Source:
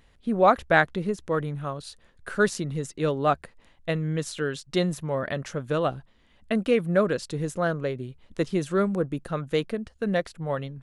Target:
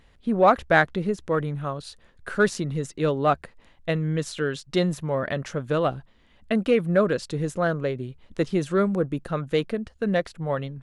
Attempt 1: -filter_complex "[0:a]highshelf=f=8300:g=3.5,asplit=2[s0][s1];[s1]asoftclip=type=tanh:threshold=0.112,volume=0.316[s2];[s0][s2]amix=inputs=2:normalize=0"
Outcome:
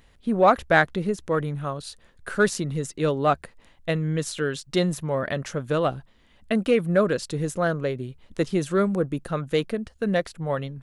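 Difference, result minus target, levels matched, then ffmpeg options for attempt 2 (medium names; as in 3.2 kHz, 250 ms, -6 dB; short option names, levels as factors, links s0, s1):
8 kHz band +4.5 dB
-filter_complex "[0:a]highshelf=f=8300:g=-7,asplit=2[s0][s1];[s1]asoftclip=type=tanh:threshold=0.112,volume=0.316[s2];[s0][s2]amix=inputs=2:normalize=0"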